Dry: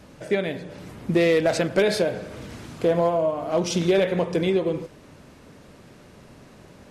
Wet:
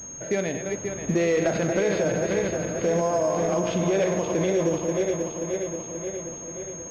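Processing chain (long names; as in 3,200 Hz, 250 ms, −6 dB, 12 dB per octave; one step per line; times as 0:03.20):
feedback delay that plays each chunk backwards 266 ms, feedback 78%, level −7 dB
brickwall limiter −15 dBFS, peak gain reduction 6.5 dB
switching amplifier with a slow clock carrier 6,500 Hz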